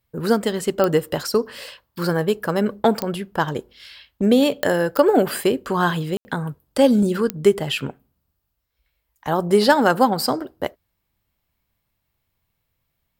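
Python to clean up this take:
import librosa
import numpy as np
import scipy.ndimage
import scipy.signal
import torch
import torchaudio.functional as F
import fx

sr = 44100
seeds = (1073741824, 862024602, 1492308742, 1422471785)

y = fx.fix_declick_ar(x, sr, threshold=10.0)
y = fx.fix_ambience(y, sr, seeds[0], print_start_s=8.29, print_end_s=8.79, start_s=6.17, end_s=6.25)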